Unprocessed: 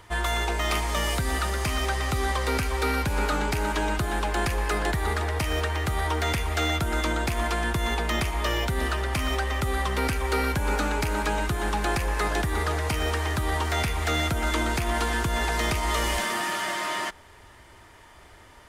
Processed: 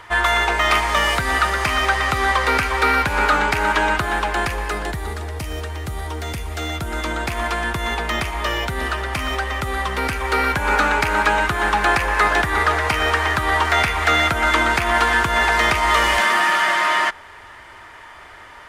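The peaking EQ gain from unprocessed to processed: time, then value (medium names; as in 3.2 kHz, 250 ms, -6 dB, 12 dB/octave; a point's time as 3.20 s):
peaking EQ 1.5 kHz 2.9 oct
3.91 s +13 dB
4.53 s +6.5 dB
5.18 s -4.5 dB
6.44 s -4.5 dB
7.32 s +6.5 dB
10.02 s +6.5 dB
10.77 s +13.5 dB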